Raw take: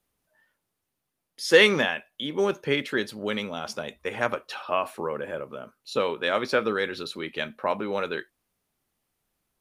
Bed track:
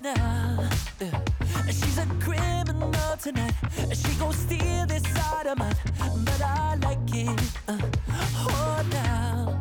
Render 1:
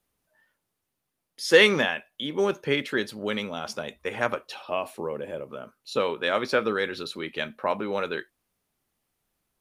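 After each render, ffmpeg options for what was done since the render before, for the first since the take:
-filter_complex "[0:a]asettb=1/sr,asplit=3[s0][s1][s2];[s0]atrim=end=4.484[s3];[s1]atrim=start=4.48:end=5.49,asetpts=PTS-STARTPTS,afade=t=in:d=0.004:c=qsin,afade=t=out:st=1.006:d=0.004:c=qsin,equalizer=f=1400:w=1.4:g=-9.5[s4];[s2]atrim=start=5.486[s5];[s3][s4]acrossfade=d=0.004:c1=hsin:c2=qsin[s6];[s6][s5]acrossfade=d=0.004:c1=qsin:c2=hsin"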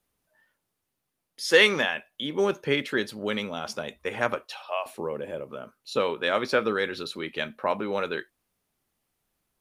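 -filter_complex "[0:a]asettb=1/sr,asplit=3[s0][s1][s2];[s0]atrim=end=1.514[s3];[s1]atrim=start=1.51:end=1.95,asetpts=PTS-STARTPTS,afade=t=in:d=0.004:c=qsin,afade=t=out:st=0.436:d=0.004:c=qsin,lowshelf=f=420:g=-6[s4];[s2]atrim=start=1.946[s5];[s3][s4]acrossfade=d=0.004:c1=hsin:c2=qsin[s6];[s6][s5]acrossfade=d=0.004:c1=qsin:c2=hsin,asettb=1/sr,asplit=3[s7][s8][s9];[s7]atrim=end=4.464[s10];[s8]atrim=start=4.46:end=4.86,asetpts=PTS-STARTPTS,afade=t=in:d=0.004:c=qsin,afade=t=out:st=0.396:d=0.004:c=qsin,highpass=f=590:w=0.5412,highpass=f=590:w=1.3066[s11];[s9]atrim=start=4.856[s12];[s10][s11]acrossfade=d=0.004:c1=hsin:c2=qsin[s13];[s13][s12]acrossfade=d=0.004:c1=qsin:c2=hsin"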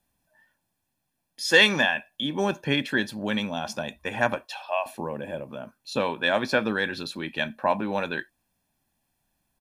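-af "equalizer=f=300:w=0.9:g=5,aecho=1:1:1.2:0.66"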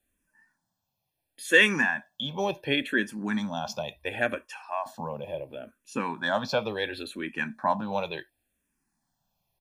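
-filter_complex "[0:a]asplit=2[s0][s1];[s1]afreqshift=-0.71[s2];[s0][s2]amix=inputs=2:normalize=1"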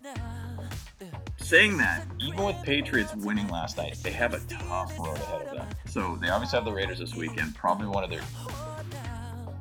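-filter_complex "[1:a]volume=0.266[s0];[0:a][s0]amix=inputs=2:normalize=0"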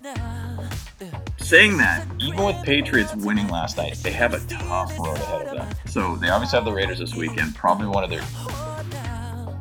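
-af "volume=2.24,alimiter=limit=0.891:level=0:latency=1"

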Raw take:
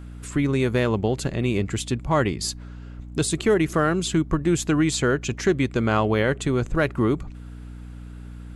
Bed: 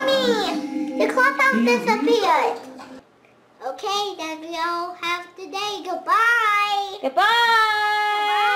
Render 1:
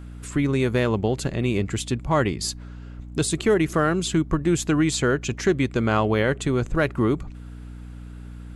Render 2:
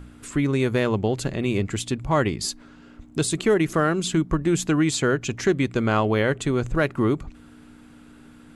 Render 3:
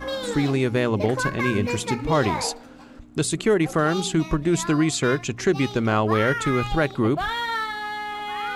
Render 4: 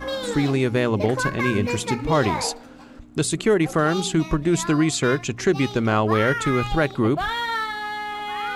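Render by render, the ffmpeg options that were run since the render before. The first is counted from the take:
-af anull
-af "bandreject=f=60:t=h:w=4,bandreject=f=120:t=h:w=4,bandreject=f=180:t=h:w=4"
-filter_complex "[1:a]volume=0.316[s0];[0:a][s0]amix=inputs=2:normalize=0"
-af "volume=1.12"

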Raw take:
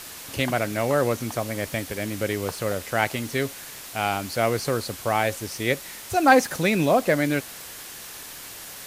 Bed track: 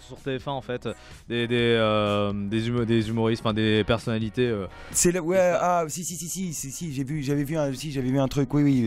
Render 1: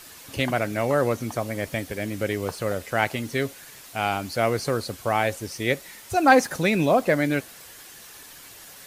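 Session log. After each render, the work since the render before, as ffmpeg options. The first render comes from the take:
-af "afftdn=nr=7:nf=-40"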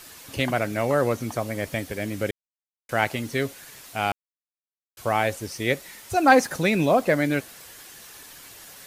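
-filter_complex "[0:a]asplit=5[s0][s1][s2][s3][s4];[s0]atrim=end=2.31,asetpts=PTS-STARTPTS,afade=t=out:st=2.306:d=0.004:c=hsin[s5];[s1]atrim=start=2.31:end=2.89,asetpts=PTS-STARTPTS,volume=0[s6];[s2]atrim=start=2.89:end=4.12,asetpts=PTS-STARTPTS,afade=t=in:d=0.004:c=hsin,afade=t=out:st=1.226:d=0.004:c=hsin[s7];[s3]atrim=start=4.12:end=4.97,asetpts=PTS-STARTPTS,volume=0[s8];[s4]atrim=start=4.97,asetpts=PTS-STARTPTS,afade=t=in:d=0.004:c=hsin[s9];[s5][s6][s7][s8][s9]concat=n=5:v=0:a=1"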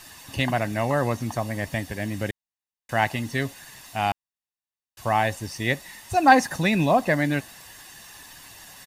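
-af "highshelf=f=10000:g=-5.5,aecho=1:1:1.1:0.51"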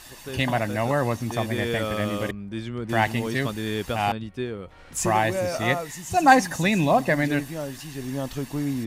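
-filter_complex "[1:a]volume=0.473[s0];[0:a][s0]amix=inputs=2:normalize=0"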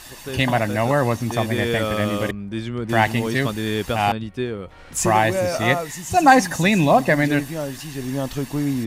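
-af "volume=1.68,alimiter=limit=0.794:level=0:latency=1"

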